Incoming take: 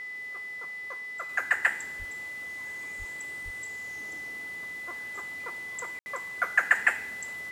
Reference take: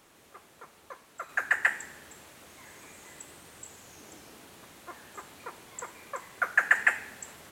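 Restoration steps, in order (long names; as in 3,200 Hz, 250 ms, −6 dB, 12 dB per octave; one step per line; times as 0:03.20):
hum removal 422.2 Hz, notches 13
notch filter 2,000 Hz, Q 30
0:01.98–0:02.10: high-pass filter 140 Hz 24 dB per octave
0:02.98–0:03.10: high-pass filter 140 Hz 24 dB per octave
0:03.44–0:03.56: high-pass filter 140 Hz 24 dB per octave
ambience match 0:05.99–0:06.06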